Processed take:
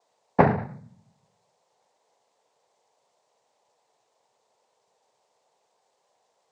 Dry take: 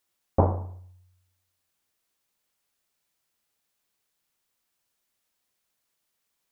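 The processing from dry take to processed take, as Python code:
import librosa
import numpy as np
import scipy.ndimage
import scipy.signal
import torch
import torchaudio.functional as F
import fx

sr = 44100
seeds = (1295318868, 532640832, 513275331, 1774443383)

y = fx.noise_vocoder(x, sr, seeds[0], bands=6)
y = fx.dmg_noise_band(y, sr, seeds[1], low_hz=420.0, high_hz=1000.0, level_db=-78.0)
y = y * librosa.db_to_amplitude(5.5)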